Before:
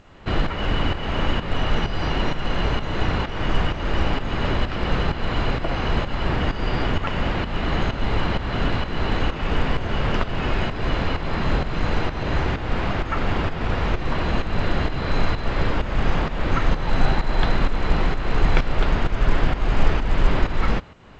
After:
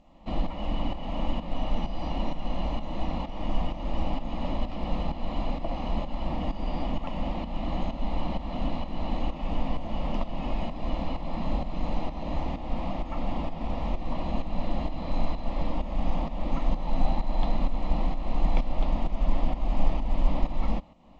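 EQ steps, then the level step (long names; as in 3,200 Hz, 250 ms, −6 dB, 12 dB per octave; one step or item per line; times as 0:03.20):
high-shelf EQ 2,600 Hz −10.5 dB
phaser with its sweep stopped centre 410 Hz, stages 6
−4.0 dB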